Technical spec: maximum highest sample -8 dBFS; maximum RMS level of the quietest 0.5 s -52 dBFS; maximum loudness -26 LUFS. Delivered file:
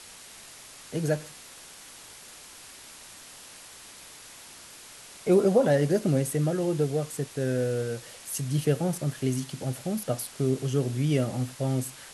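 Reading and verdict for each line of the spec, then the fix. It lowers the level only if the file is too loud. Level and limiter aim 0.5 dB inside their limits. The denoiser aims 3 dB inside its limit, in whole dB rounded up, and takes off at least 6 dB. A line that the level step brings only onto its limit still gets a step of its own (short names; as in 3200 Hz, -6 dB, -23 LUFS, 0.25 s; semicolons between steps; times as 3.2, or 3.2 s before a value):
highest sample -10.5 dBFS: OK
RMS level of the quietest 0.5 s -47 dBFS: fail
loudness -27.5 LUFS: OK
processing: denoiser 8 dB, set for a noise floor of -47 dBFS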